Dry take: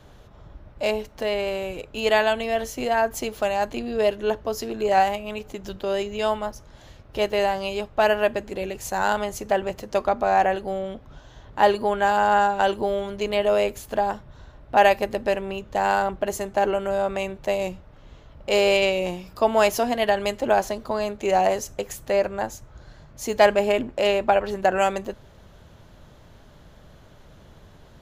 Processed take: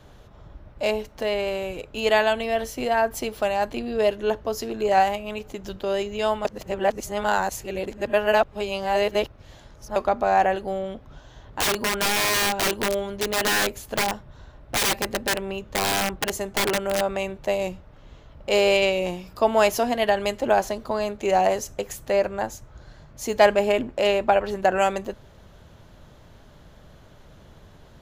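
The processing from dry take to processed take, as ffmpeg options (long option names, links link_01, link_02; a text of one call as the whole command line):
ffmpeg -i in.wav -filter_complex "[0:a]asettb=1/sr,asplit=3[link_01][link_02][link_03];[link_01]atrim=end=2.394[link_04];[link_02]atrim=start=2.39:end=4,asetpts=PTS-STARTPTS,afade=type=in:duration=0.004:curve=qsin,afade=type=out:start_time=1.606:duration=0.004:curve=qsin,bandreject=frequency=6700:width=10[link_05];[link_03]atrim=start=3.996[link_06];[link_04][link_05]acrossfade=duration=0.004:curve1=hsin:curve2=qsin[link_07];[link_07][link_06]acrossfade=duration=0.004:curve1=qsin:curve2=hsin,asettb=1/sr,asplit=3[link_08][link_09][link_10];[link_08]atrim=end=11.604[link_11];[link_09]atrim=start=11.6:end=17.01,asetpts=PTS-STARTPTS,afade=type=in:duration=0.004:curve=qsin,afade=type=out:start_time=5.406:duration=0.004:curve=qsin,aeval=exprs='(mod(7.08*val(0)+1,2)-1)/7.08':channel_layout=same[link_12];[link_10]atrim=start=17.006[link_13];[link_11][link_12]acrossfade=duration=0.004:curve1=hsin:curve2=qsin[link_14];[link_14][link_13]acrossfade=duration=0.004:curve1=qsin:curve2=hsin,asplit=3[link_15][link_16][link_17];[link_15]atrim=end=6.452[link_18];[link_16]atrim=start=6.448:end=9.962,asetpts=PTS-STARTPTS,areverse[link_19];[link_17]atrim=start=9.958[link_20];[link_18][link_19]acrossfade=duration=0.004:curve1=hsin:curve2=hsin[link_21];[link_21][link_20]acrossfade=duration=0.004:curve1=hsin:curve2=hsin" out.wav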